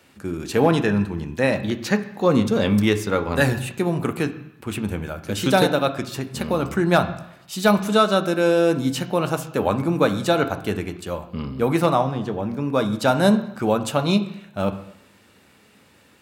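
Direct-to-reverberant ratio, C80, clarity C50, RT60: 7.0 dB, 15.0 dB, 13.0 dB, 0.80 s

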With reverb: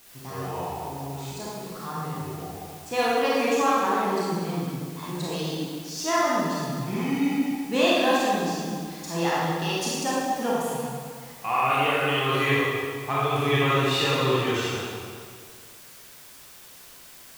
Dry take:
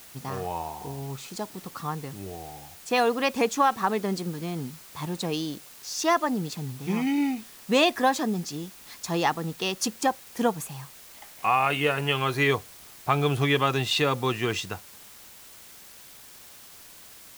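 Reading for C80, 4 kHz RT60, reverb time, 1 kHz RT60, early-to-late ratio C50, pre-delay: -1.5 dB, 1.6 s, 2.0 s, 2.0 s, -4.5 dB, 25 ms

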